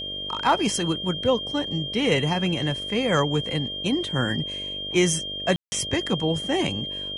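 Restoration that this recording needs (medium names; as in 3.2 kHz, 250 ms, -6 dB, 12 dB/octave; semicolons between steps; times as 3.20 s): clip repair -10.5 dBFS; de-hum 48.9 Hz, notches 13; band-stop 3.2 kHz, Q 30; room tone fill 5.56–5.72 s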